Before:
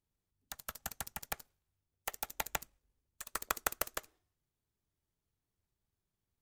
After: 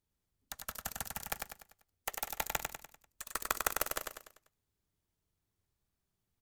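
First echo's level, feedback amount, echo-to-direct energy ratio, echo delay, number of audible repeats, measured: −4.5 dB, 44%, −3.5 dB, 98 ms, 5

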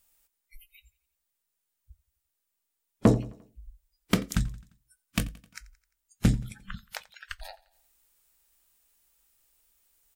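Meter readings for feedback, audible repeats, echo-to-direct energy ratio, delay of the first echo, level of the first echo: 55%, 3, −20.5 dB, 87 ms, −22.0 dB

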